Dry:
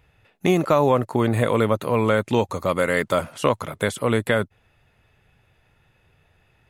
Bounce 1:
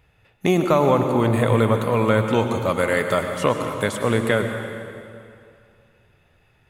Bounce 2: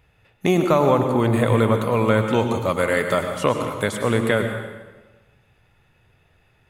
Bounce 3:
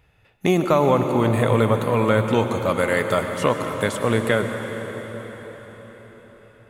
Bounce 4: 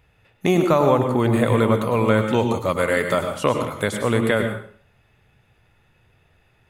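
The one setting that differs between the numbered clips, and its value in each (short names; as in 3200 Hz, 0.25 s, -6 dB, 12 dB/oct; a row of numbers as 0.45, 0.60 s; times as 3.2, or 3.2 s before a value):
plate-style reverb, RT60: 2.4, 1.2, 5.3, 0.51 s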